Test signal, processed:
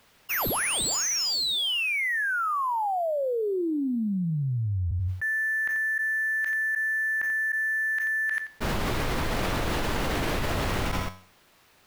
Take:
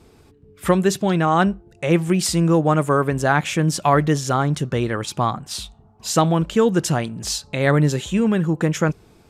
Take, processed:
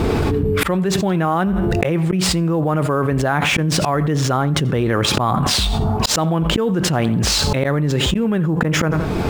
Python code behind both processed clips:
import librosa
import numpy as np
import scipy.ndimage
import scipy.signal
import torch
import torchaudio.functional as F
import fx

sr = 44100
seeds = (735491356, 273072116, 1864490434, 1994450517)

p1 = fx.sample_hold(x, sr, seeds[0], rate_hz=12000.0, jitter_pct=0)
p2 = x + F.gain(torch.from_numpy(p1), -5.5).numpy()
p3 = fx.high_shelf(p2, sr, hz=4500.0, db=-9.5)
p4 = fx.comb_fb(p3, sr, f0_hz=92.0, decay_s=0.47, harmonics='all', damping=0.0, mix_pct=30)
p5 = p4 + fx.echo_feedback(p4, sr, ms=86, feedback_pct=20, wet_db=-21.5, dry=0)
p6 = fx.auto_swell(p5, sr, attack_ms=668.0)
p7 = fx.env_flatten(p6, sr, amount_pct=100)
y = F.gain(torch.from_numpy(p7), -4.0).numpy()